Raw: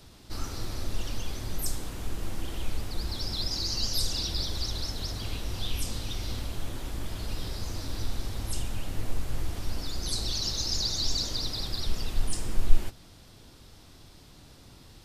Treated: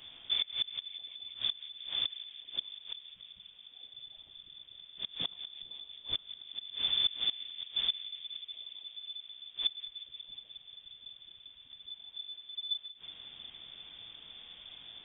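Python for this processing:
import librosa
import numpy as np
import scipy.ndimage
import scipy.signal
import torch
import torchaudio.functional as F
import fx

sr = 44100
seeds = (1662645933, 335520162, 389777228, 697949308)

y = fx.gate_flip(x, sr, shuts_db=-23.0, range_db=-25)
y = fx.echo_bbd(y, sr, ms=180, stages=2048, feedback_pct=85, wet_db=-15.0)
y = fx.freq_invert(y, sr, carrier_hz=3500)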